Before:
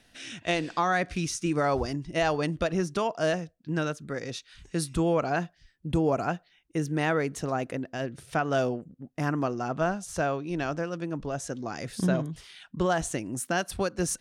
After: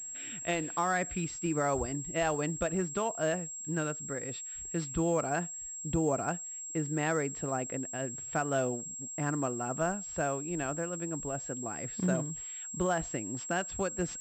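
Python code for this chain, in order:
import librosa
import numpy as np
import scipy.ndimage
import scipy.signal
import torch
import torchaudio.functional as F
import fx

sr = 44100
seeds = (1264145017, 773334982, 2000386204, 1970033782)

y = fx.pwm(x, sr, carrier_hz=7600.0)
y = y * librosa.db_to_amplitude(-4.5)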